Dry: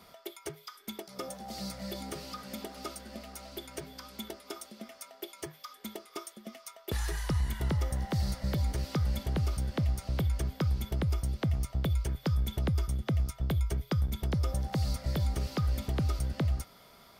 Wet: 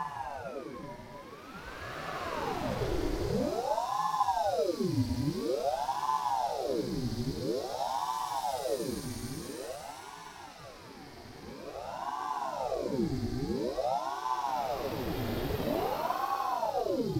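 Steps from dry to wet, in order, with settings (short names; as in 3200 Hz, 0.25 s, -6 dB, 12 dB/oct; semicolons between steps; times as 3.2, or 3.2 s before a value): added harmonics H 6 -29 dB, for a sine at -20.5 dBFS; Paulstretch 31×, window 0.10 s, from 8.04; ring modulator with a swept carrier 560 Hz, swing 70%, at 0.49 Hz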